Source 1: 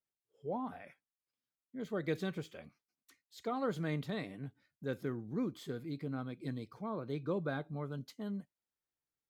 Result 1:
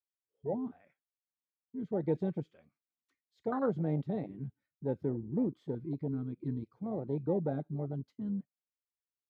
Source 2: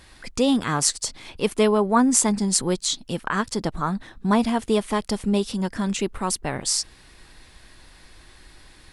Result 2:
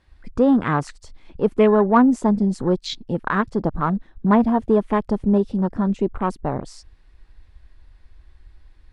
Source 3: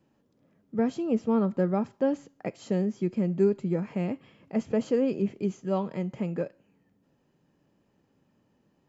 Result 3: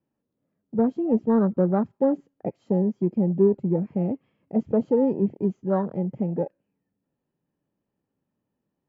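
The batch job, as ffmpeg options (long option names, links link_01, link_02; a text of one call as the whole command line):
ffmpeg -i in.wav -filter_complex "[0:a]aemphasis=mode=reproduction:type=75fm,afwtdn=0.0224,asplit=2[link_01][link_02];[link_02]asoftclip=type=tanh:threshold=-17dB,volume=-12dB[link_03];[link_01][link_03]amix=inputs=2:normalize=0,volume=2dB" out.wav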